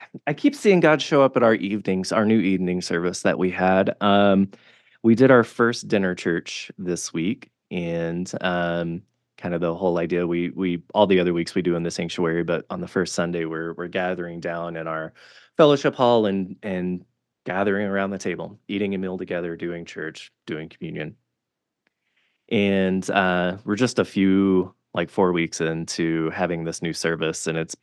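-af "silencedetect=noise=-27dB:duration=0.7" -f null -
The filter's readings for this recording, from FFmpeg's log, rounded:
silence_start: 21.08
silence_end: 22.52 | silence_duration: 1.44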